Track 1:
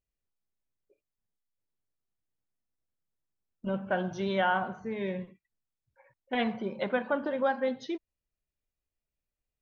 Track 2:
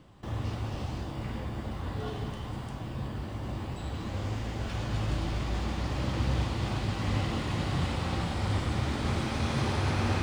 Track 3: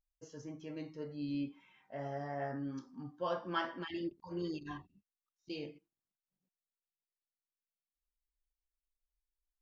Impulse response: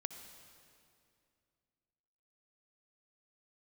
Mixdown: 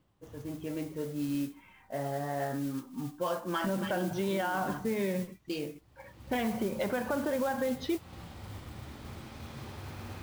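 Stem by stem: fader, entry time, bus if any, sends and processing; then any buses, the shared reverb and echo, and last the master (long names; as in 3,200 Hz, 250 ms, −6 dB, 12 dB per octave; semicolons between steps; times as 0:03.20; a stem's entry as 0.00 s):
+2.5 dB, 0.00 s, bus A, no send, high-shelf EQ 5,500 Hz −10 dB
−15.0 dB, 0.00 s, no bus, no send, automatic ducking −22 dB, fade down 1.95 s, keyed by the third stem
+2.0 dB, 0.00 s, bus A, no send, adaptive Wiener filter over 9 samples
bus A: 0.0 dB, automatic gain control gain up to 8.5 dB; brickwall limiter −16 dBFS, peak gain reduction 10.5 dB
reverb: not used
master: noise that follows the level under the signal 18 dB; downward compressor 2 to 1, threshold −34 dBFS, peak gain reduction 8.5 dB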